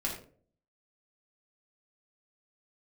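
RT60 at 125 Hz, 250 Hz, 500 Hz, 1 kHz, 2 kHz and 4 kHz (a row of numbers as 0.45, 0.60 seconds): 0.65, 0.60, 0.55, 0.35, 0.30, 0.30 seconds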